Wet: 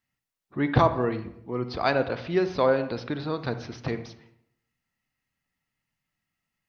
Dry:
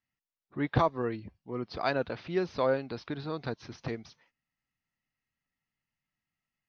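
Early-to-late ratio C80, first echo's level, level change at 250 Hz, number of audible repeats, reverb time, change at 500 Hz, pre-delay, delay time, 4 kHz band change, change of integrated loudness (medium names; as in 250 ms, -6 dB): 14.0 dB, no echo, +6.0 dB, no echo, 0.70 s, +6.0 dB, 39 ms, no echo, +5.5 dB, +6.0 dB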